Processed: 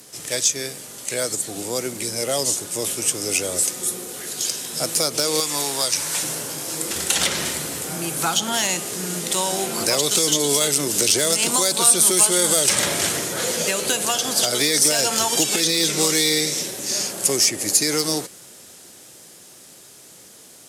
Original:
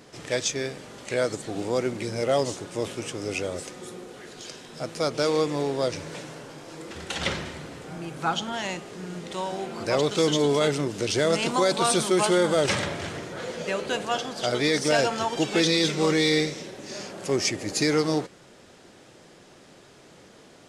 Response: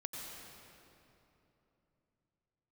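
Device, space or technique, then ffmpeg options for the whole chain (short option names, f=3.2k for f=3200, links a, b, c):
FM broadcast chain: -filter_complex "[0:a]highpass=53,dynaudnorm=f=370:g=21:m=10dB,acrossover=split=160|2500[a][b][c];[a]acompressor=threshold=-40dB:ratio=4[d];[b]acompressor=threshold=-19dB:ratio=4[e];[c]acompressor=threshold=-26dB:ratio=4[f];[d][e][f]amix=inputs=3:normalize=0,aemphasis=mode=production:type=50fm,alimiter=limit=-10dB:level=0:latency=1:release=177,asoftclip=type=hard:threshold=-12.5dB,lowpass=f=15k:w=0.5412,lowpass=f=15k:w=1.3066,aemphasis=mode=production:type=50fm,asettb=1/sr,asplit=3[g][h][i];[g]atrim=end=5.404[j];[h]atrim=start=5.4:end=6.23,asetpts=PTS-STARTPTS,afade=t=in:d=0.004:c=qsin,afade=t=out:st=0.826:d=0.004:c=qsin,lowshelf=f=670:t=q:w=1.5:g=-6.5[k];[i]atrim=start=6.226[l];[j][k]acrossfade=d=0.004:c1=hsin:c2=qsin[m];[m][l]acrossfade=d=0.004:c1=qsin:c2=hsin,volume=-1dB"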